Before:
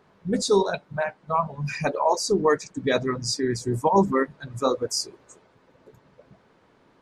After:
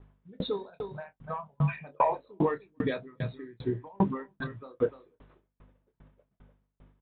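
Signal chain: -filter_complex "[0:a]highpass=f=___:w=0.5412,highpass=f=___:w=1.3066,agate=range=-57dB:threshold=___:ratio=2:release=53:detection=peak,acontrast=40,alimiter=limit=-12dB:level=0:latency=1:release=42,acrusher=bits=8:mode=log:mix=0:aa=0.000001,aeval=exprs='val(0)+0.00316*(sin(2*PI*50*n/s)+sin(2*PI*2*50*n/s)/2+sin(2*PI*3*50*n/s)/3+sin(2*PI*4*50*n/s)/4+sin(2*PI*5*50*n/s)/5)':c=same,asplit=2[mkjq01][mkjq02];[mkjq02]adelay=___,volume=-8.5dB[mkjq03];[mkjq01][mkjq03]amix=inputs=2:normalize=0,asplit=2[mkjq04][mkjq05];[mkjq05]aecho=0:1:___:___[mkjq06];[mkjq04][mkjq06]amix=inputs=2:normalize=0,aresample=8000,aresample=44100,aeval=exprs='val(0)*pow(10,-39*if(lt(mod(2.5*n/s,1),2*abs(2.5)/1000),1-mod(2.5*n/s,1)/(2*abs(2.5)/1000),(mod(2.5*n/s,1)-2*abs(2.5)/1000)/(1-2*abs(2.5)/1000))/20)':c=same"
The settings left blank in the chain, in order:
91, 91, -49dB, 27, 296, 0.168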